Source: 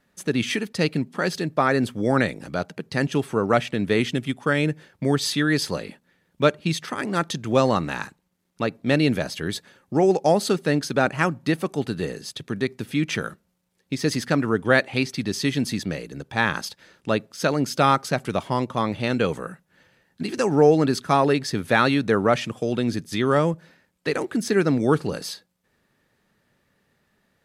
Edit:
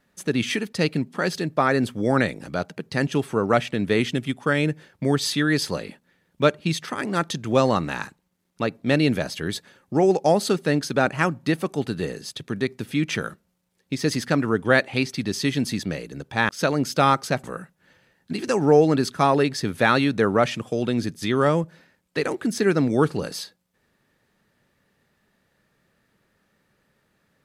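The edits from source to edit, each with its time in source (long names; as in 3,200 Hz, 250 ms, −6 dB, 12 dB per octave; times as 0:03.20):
0:16.49–0:17.30: remove
0:18.25–0:19.34: remove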